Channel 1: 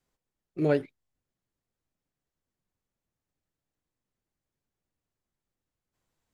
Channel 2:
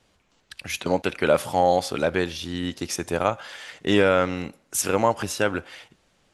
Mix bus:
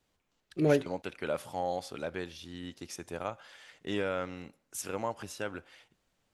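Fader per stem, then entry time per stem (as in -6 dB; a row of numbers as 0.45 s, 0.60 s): -0.5 dB, -14.0 dB; 0.00 s, 0.00 s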